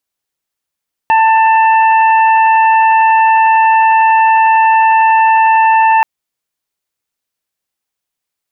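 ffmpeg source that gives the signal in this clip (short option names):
-f lavfi -i "aevalsrc='0.501*sin(2*PI*889*t)+0.15*sin(2*PI*1778*t)+0.112*sin(2*PI*2667*t)':d=4.93:s=44100"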